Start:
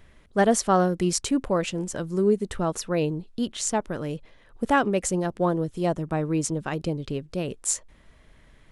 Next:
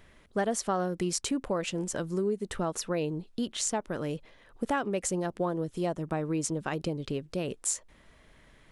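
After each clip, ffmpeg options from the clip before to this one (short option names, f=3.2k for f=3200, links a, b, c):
-af "lowshelf=f=140:g=-6.5,acompressor=threshold=-28dB:ratio=3"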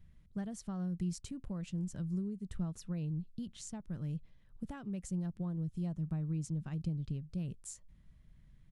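-af "firequalizer=gain_entry='entry(170,0);entry(250,-13);entry(430,-23);entry(4400,-18)':delay=0.05:min_phase=1,volume=1dB"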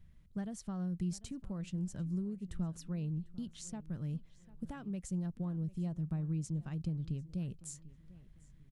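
-filter_complex "[0:a]asplit=2[a][b];[b]adelay=746,lowpass=f=4k:p=1,volume=-19dB,asplit=2[c][d];[d]adelay=746,lowpass=f=4k:p=1,volume=0.36,asplit=2[e][f];[f]adelay=746,lowpass=f=4k:p=1,volume=0.36[g];[a][c][e][g]amix=inputs=4:normalize=0"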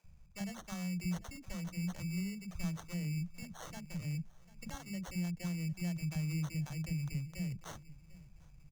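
-filter_complex "[0:a]acrusher=samples=18:mix=1:aa=0.000001,equalizer=f=250:t=o:w=0.33:g=-10,equalizer=f=400:t=o:w=0.33:g=-9,equalizer=f=6.3k:t=o:w=0.33:g=10,acrossover=split=300[a][b];[a]adelay=40[c];[c][b]amix=inputs=2:normalize=0,volume=1.5dB"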